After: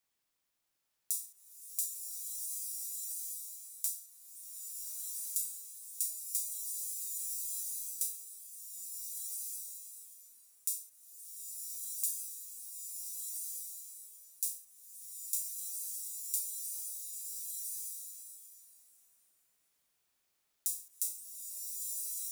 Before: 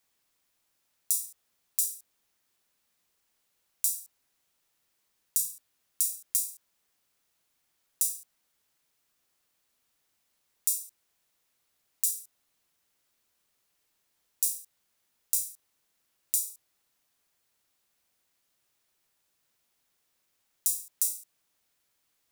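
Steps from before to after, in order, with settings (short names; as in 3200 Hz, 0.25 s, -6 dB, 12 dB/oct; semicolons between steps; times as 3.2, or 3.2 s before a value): 1.94–3.88 block floating point 5-bit; bloom reverb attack 1.42 s, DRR -2 dB; gain -7.5 dB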